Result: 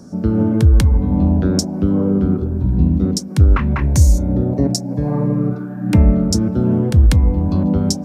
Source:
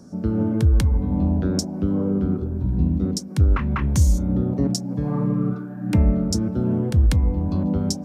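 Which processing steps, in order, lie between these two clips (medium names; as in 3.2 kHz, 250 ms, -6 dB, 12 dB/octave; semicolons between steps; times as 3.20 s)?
3.73–5.61 s: graphic EQ with 31 bands 200 Hz -6 dB, 630 Hz +5 dB, 1.25 kHz -8 dB, 3.15 kHz -8 dB; trim +6 dB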